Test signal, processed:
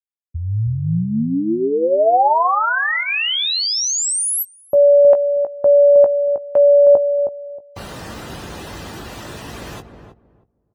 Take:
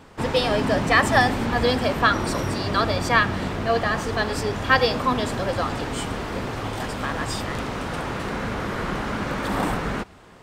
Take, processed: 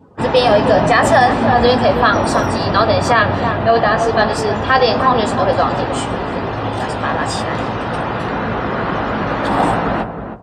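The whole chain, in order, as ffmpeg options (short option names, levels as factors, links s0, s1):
-filter_complex "[0:a]highpass=60,bandreject=f=2200:w=18,afftdn=nr=23:nf=-44,adynamicequalizer=threshold=0.0158:dfrequency=730:dqfactor=1.4:tfrequency=730:tqfactor=1.4:attack=5:release=100:ratio=0.375:range=3.5:mode=boostabove:tftype=bell,asplit=2[s0][s1];[s1]adelay=18,volume=0.335[s2];[s0][s2]amix=inputs=2:normalize=0,asplit=2[s3][s4];[s4]adelay=316,lowpass=f=820:p=1,volume=0.473,asplit=2[s5][s6];[s6]adelay=316,lowpass=f=820:p=1,volume=0.22,asplit=2[s7][s8];[s8]adelay=316,lowpass=f=820:p=1,volume=0.22[s9];[s5][s7][s9]amix=inputs=3:normalize=0[s10];[s3][s10]amix=inputs=2:normalize=0,alimiter=level_in=2.24:limit=0.891:release=50:level=0:latency=1,volume=0.891"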